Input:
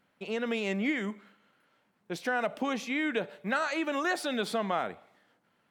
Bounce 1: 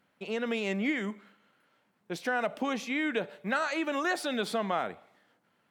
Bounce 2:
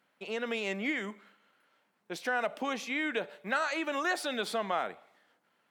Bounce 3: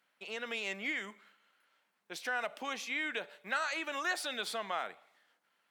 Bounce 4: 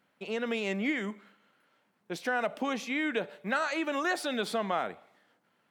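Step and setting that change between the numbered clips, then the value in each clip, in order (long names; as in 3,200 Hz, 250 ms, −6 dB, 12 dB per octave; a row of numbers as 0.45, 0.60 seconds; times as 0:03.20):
high-pass filter, corner frequency: 44, 400, 1,500, 140 Hertz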